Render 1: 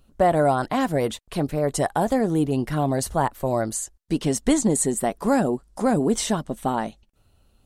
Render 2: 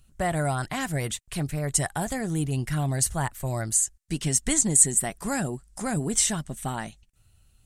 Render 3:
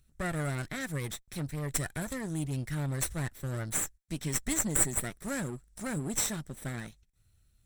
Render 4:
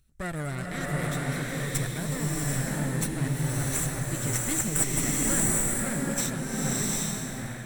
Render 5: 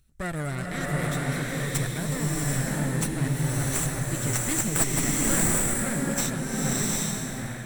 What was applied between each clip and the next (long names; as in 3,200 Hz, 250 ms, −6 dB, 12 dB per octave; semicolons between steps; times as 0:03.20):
graphic EQ with 10 bands 125 Hz +4 dB, 250 Hz −8 dB, 500 Hz −10 dB, 1,000 Hz −7 dB, 2,000 Hz +3 dB, 4,000 Hz −3 dB, 8,000 Hz +8 dB
lower of the sound and its delayed copy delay 0.53 ms; level −6.5 dB
slow-attack reverb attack 780 ms, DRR −4.5 dB
stylus tracing distortion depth 0.038 ms; level +2 dB